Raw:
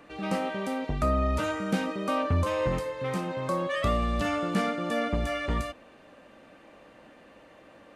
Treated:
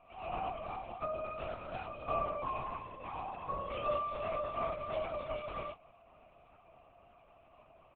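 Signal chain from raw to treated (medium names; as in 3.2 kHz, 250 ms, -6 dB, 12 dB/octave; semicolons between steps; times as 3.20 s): vowel filter a; bass shelf 390 Hz -5.5 dB; doubling 22 ms -2 dB; LPC vocoder at 8 kHz whisper; trim +1 dB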